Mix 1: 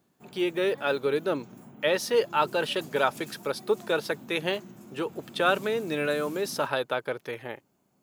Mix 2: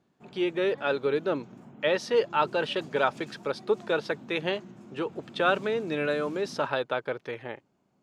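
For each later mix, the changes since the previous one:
master: add distance through air 100 m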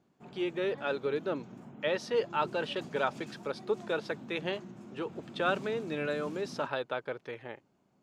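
speech -5.5 dB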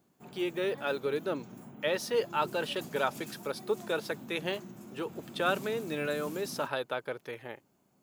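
master: remove distance through air 100 m

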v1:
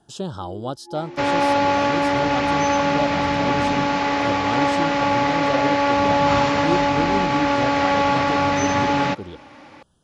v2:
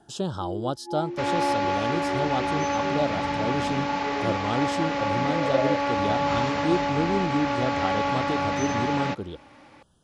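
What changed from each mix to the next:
first sound +4.5 dB; second sound -7.0 dB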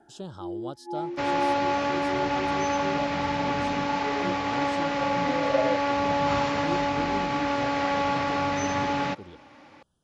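speech -10.0 dB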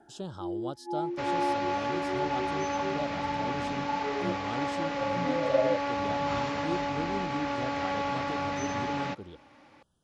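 second sound -5.5 dB

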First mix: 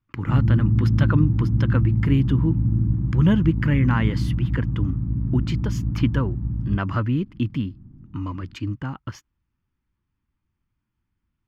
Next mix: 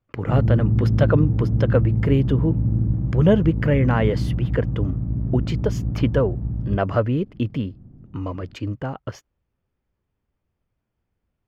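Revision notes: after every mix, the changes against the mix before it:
master: add high-order bell 550 Hz +13.5 dB 1.1 oct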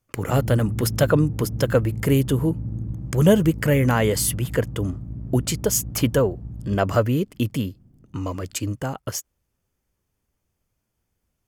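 background -9.0 dB; master: remove distance through air 280 m

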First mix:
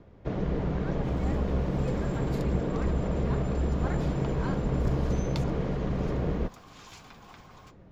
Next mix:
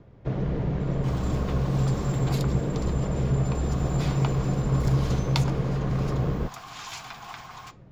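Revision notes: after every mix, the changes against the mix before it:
speech: muted; second sound +11.5 dB; master: add peaking EQ 130 Hz +9.5 dB 0.33 oct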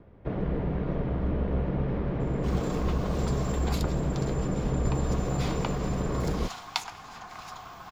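first sound: add low-pass 2.9 kHz 12 dB/octave; second sound: entry +1.40 s; master: add peaking EQ 130 Hz -9.5 dB 0.33 oct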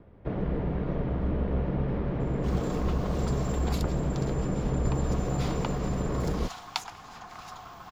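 reverb: off

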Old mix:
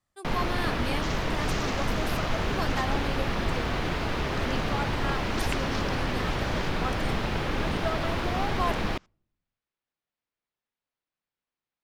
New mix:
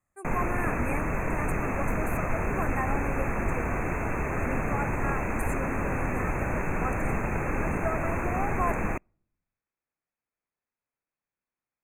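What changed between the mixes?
second sound: muted; master: add brick-wall FIR band-stop 2.7–6.1 kHz

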